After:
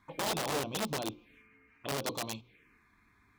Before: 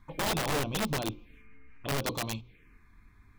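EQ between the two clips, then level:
high-pass filter 310 Hz 6 dB per octave
dynamic equaliser 1,900 Hz, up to −5 dB, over −46 dBFS, Q 0.85
high-shelf EQ 12,000 Hz −5.5 dB
0.0 dB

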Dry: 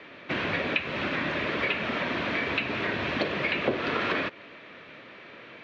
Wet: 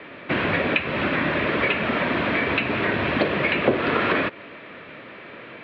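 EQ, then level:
high-frequency loss of the air 320 metres
high-shelf EQ 4,600 Hz +5 dB
+8.0 dB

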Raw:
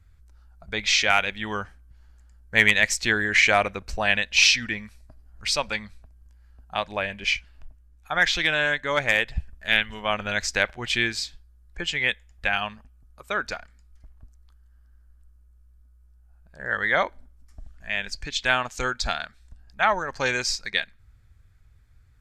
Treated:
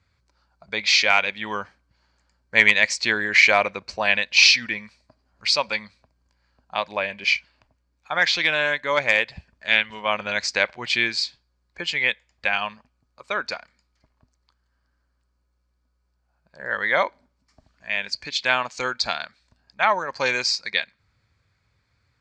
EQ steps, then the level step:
loudspeaker in its box 140–7,400 Hz, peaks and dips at 550 Hz +5 dB, 1,000 Hz +7 dB, 2,300 Hz +6 dB, 4,500 Hz +10 dB
−1.5 dB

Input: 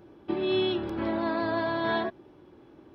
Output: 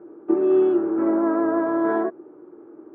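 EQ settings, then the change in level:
loudspeaker in its box 310–2,000 Hz, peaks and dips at 330 Hz +8 dB, 470 Hz +8 dB, 1,300 Hz +9 dB
tilt shelving filter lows +8 dB, about 1,300 Hz
notch filter 520 Hz, Q 12
−1.5 dB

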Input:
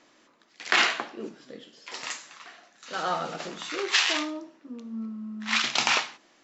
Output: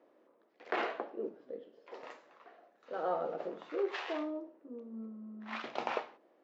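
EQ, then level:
resonant band-pass 490 Hz, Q 2.3
high-frequency loss of the air 83 metres
+2.5 dB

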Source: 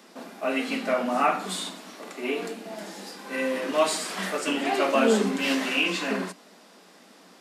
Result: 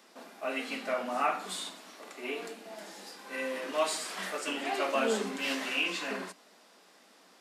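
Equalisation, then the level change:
high-pass filter 430 Hz 6 dB per octave
−5.5 dB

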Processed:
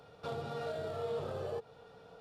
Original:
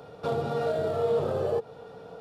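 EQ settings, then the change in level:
first-order pre-emphasis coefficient 0.97
RIAA equalisation playback
high-shelf EQ 5,800 Hz −5 dB
+8.0 dB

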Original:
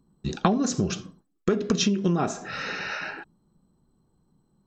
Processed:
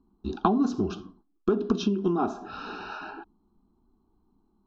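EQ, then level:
Butterworth band-reject 2,000 Hz, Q 3.3
high-frequency loss of the air 300 metres
phaser with its sweep stopped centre 540 Hz, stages 6
+3.0 dB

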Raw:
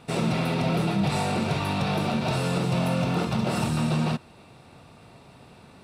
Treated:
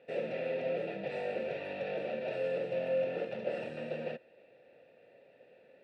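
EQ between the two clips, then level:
formant filter e
low-shelf EQ 180 Hz −4.5 dB
high-shelf EQ 3,200 Hz −10 dB
+4.0 dB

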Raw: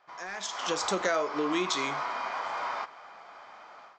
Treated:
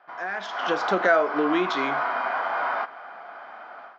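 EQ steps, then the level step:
loudspeaker in its box 230–5,300 Hz, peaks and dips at 250 Hz +3 dB, 710 Hz +8 dB, 1,500 Hz +8 dB, 3,000 Hz +4 dB
spectral tilt −3 dB per octave
parametric band 1,700 Hz +4.5 dB 1.2 octaves
+1.5 dB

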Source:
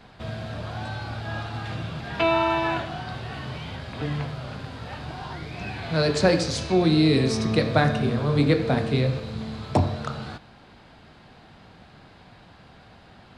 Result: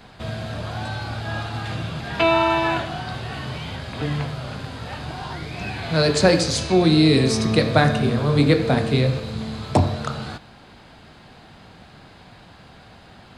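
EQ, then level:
high-shelf EQ 6,300 Hz +7.5 dB
notch filter 5,600 Hz, Q 22
+3.5 dB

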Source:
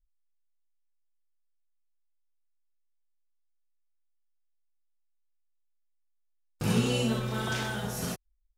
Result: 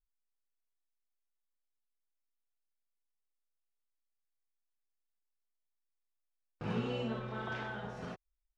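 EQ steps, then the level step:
head-to-tape spacing loss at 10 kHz 29 dB
low-shelf EQ 430 Hz −11.5 dB
high-shelf EQ 4,100 Hz −10.5 dB
0.0 dB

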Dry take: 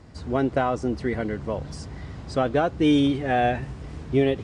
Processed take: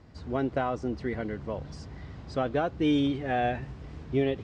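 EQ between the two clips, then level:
high-frequency loss of the air 120 metres
high-shelf EQ 4,200 Hz +6 dB
−5.5 dB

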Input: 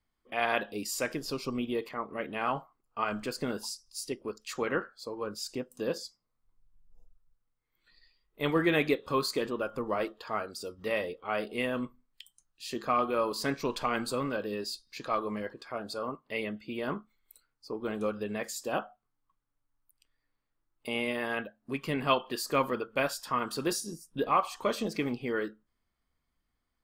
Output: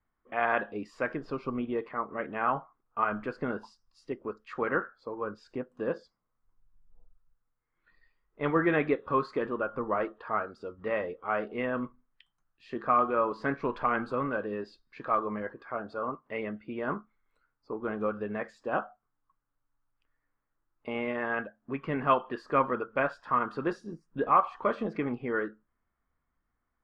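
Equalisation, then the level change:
low-pass with resonance 1,500 Hz, resonance Q 1.6
0.0 dB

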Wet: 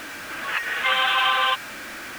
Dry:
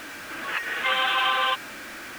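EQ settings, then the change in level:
dynamic equaliser 330 Hz, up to −6 dB, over −46 dBFS, Q 1.2
+3.0 dB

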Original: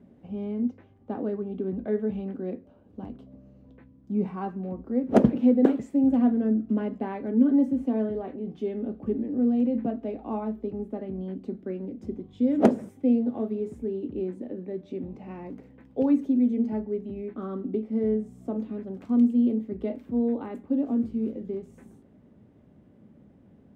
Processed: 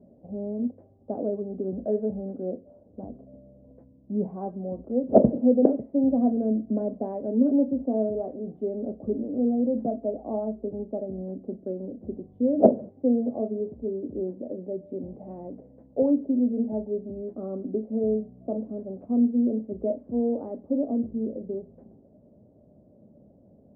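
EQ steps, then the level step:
low-pass with resonance 620 Hz, resonance Q 4.9
low-shelf EQ 460 Hz +5.5 dB
−7.0 dB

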